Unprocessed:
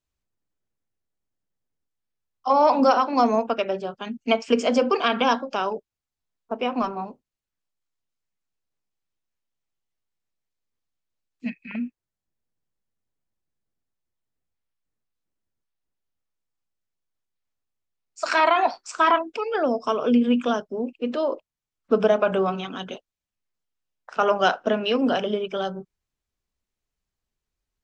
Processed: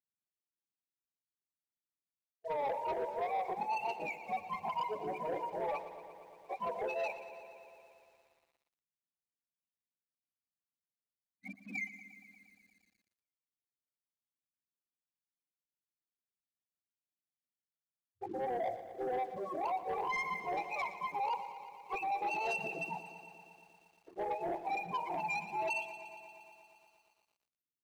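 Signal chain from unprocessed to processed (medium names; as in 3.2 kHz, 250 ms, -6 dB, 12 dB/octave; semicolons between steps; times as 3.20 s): spectrum inverted on a logarithmic axis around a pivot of 710 Hz; elliptic band-stop 1–2.4 kHz, stop band 40 dB; spectral gate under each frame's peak -15 dB strong; thinning echo 184 ms, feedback 59%, high-pass 1 kHz, level -22 dB; reverse; compression 6:1, threshold -37 dBFS, peak gain reduction 20.5 dB; reverse; high-pass 510 Hz 12 dB/octave; waveshaping leveller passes 2; bit-crushed delay 117 ms, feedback 80%, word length 11-bit, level -14 dB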